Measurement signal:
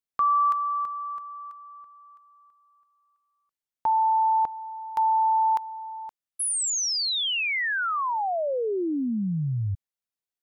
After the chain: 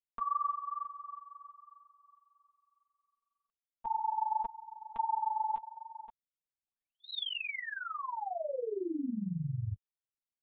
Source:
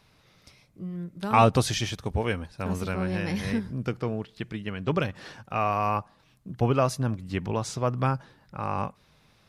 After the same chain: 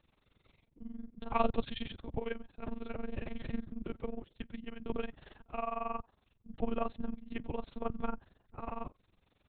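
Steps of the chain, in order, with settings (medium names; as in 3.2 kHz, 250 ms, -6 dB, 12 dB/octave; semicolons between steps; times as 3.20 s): monotone LPC vocoder at 8 kHz 230 Hz; peaking EQ 1.7 kHz -5 dB 1.9 oct; AM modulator 22 Hz, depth 75%; trim -5 dB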